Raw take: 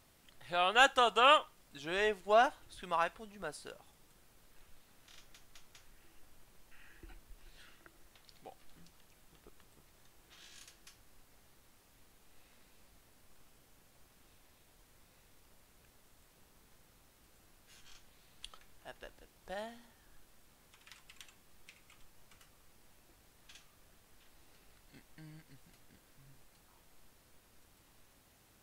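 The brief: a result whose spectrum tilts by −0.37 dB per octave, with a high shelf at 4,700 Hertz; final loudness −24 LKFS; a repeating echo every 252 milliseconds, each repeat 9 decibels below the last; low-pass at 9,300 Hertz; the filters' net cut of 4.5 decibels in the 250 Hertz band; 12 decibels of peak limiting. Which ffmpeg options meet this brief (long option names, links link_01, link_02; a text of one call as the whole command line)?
ffmpeg -i in.wav -af "lowpass=9300,equalizer=frequency=250:width_type=o:gain=-6,highshelf=frequency=4700:gain=-8,alimiter=level_in=1dB:limit=-24dB:level=0:latency=1,volume=-1dB,aecho=1:1:252|504|756|1008:0.355|0.124|0.0435|0.0152,volume=14.5dB" out.wav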